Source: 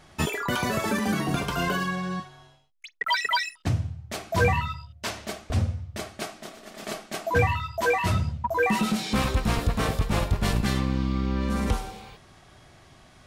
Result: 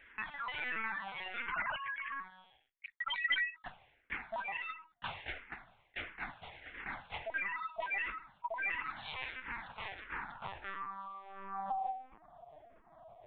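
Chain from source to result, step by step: 1.53–2.12 s: formants replaced by sine waves; compression 5:1, threshold -28 dBFS, peak gain reduction 11 dB; resonant low shelf 530 Hz -8 dB, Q 3; band-pass sweep 2 kHz -> 570 Hz, 9.88–12.27 s; LPC vocoder at 8 kHz pitch kept; barber-pole phaser -1.5 Hz; trim +4 dB

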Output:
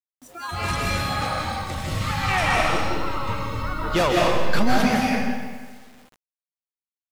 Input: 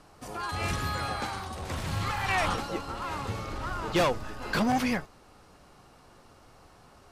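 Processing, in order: spectral noise reduction 20 dB; algorithmic reverb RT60 1.5 s, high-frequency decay 0.9×, pre-delay 115 ms, DRR -3 dB; bit crusher 9-bit; trim +3.5 dB

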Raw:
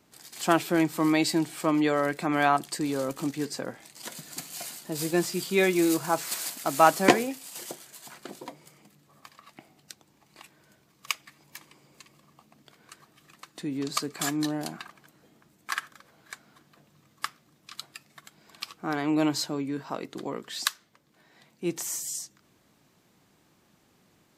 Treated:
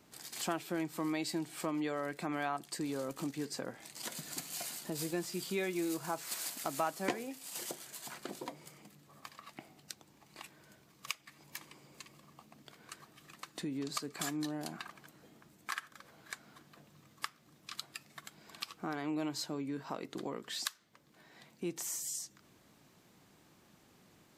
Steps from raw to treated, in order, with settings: compression 2.5:1, threshold -39 dBFS, peak gain reduction 17.5 dB

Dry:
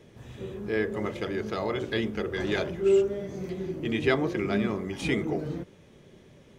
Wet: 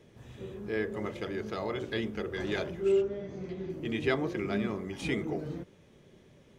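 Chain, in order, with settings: 2.92–3.70 s: low-pass 4.8 kHz 12 dB/octave; trim -4.5 dB

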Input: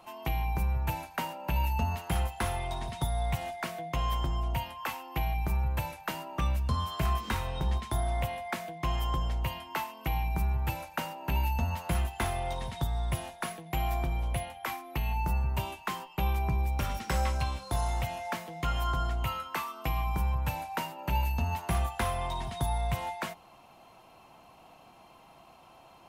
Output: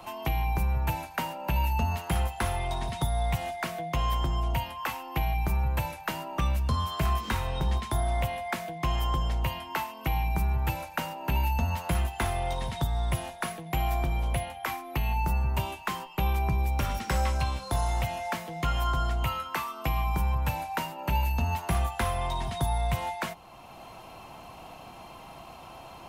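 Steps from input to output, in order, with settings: three bands compressed up and down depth 40%; trim +2.5 dB

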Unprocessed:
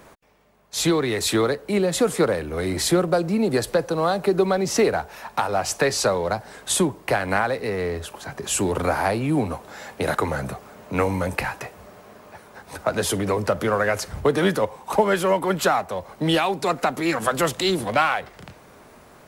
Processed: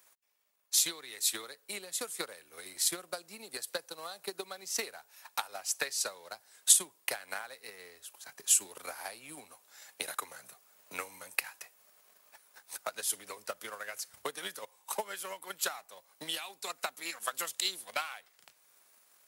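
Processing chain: transient shaper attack +12 dB, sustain -3 dB; differentiator; trim -6.5 dB

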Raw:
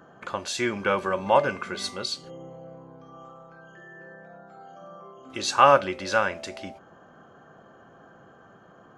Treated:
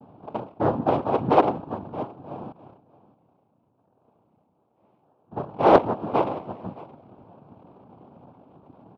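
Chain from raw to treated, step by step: local Wiener filter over 25 samples; 2.51–5.31 s: gate -42 dBFS, range -20 dB; steep low-pass 610 Hz 72 dB/octave; noise-vocoded speech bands 4; delay 622 ms -20.5 dB; loudspeaker Doppler distortion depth 0.32 ms; trim +6 dB

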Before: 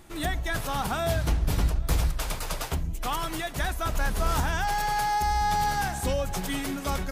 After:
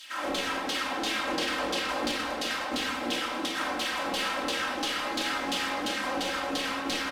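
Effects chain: spectral contrast reduction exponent 0.19; de-hum 72.12 Hz, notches 39; LFO band-pass saw down 2.9 Hz 260–3900 Hz; comb 3.8 ms, depth 79%; compression, threshold -41 dBFS, peak gain reduction 11.5 dB; simulated room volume 1300 m³, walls mixed, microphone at 2.8 m; loudspeaker Doppler distortion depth 0.18 ms; trim +8.5 dB

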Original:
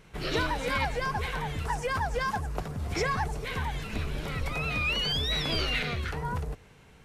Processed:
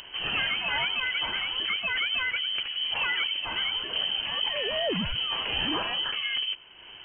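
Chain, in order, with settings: upward compressor, threshold -40 dBFS; sine folder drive 6 dB, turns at -14.5 dBFS; frequency inversion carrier 3.1 kHz; trim -8 dB

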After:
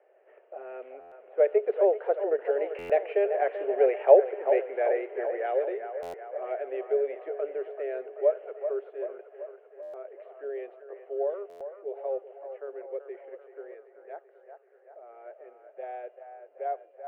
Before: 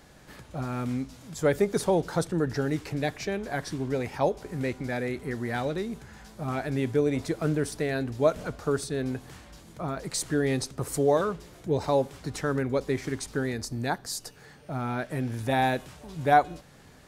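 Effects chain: Doppler pass-by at 3.90 s, 14 m/s, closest 16 m; Chebyshev band-pass 390–2900 Hz, order 5; level-controlled noise filter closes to 1.9 kHz, open at -34 dBFS; resonant low shelf 800 Hz +6.5 dB, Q 3; on a send: feedback echo behind a band-pass 385 ms, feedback 61%, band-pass 1 kHz, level -7.5 dB; on the sum: buffer glitch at 1.00/2.78/6.02/9.82/11.49 s, samples 512, times 9

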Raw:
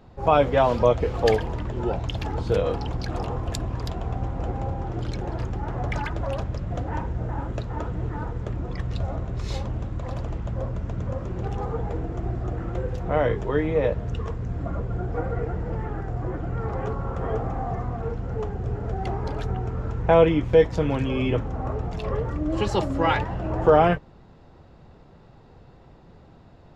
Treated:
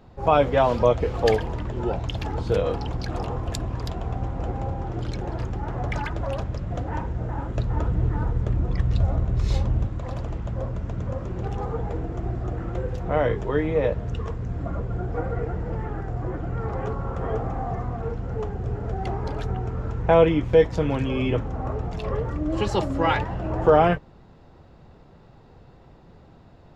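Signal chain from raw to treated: 7.57–9.87 s: bass shelf 170 Hz +8.5 dB

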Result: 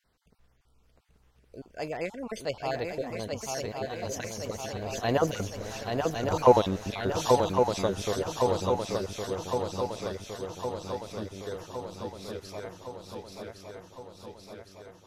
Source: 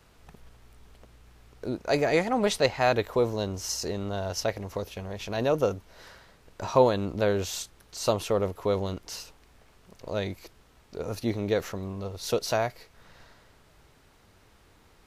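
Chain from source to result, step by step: random holes in the spectrogram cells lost 33%; Doppler pass-by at 5.85 s, 20 m/s, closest 15 m; shuffle delay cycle 1112 ms, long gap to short 3:1, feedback 63%, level -4 dB; trim +5 dB

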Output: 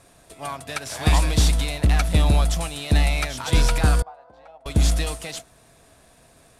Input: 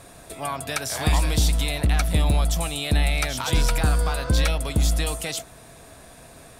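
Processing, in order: CVSD coder 64 kbps; 4.02–4.66 s: band-pass filter 770 Hz, Q 4.8; upward expansion 1.5:1, over -39 dBFS; trim +3.5 dB

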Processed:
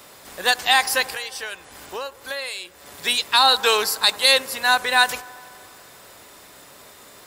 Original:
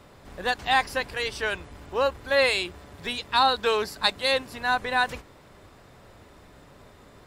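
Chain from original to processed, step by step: RIAA curve recording; 1.12–2.86 s: compression 5:1, threshold -35 dBFS, peak gain reduction 17.5 dB; on a send: feedback echo behind a band-pass 86 ms, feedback 78%, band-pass 770 Hz, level -20.5 dB; on the sum: loudness maximiser +8.5 dB; trim -3 dB

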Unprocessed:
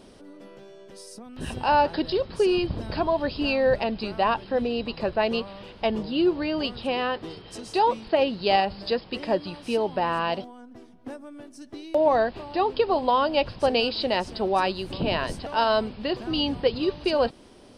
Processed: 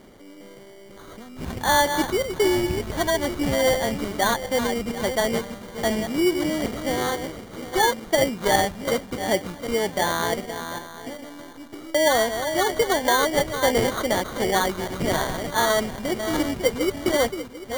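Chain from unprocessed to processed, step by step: backward echo that repeats 372 ms, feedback 43%, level -8 dB; sample-and-hold 17×; trim +1 dB

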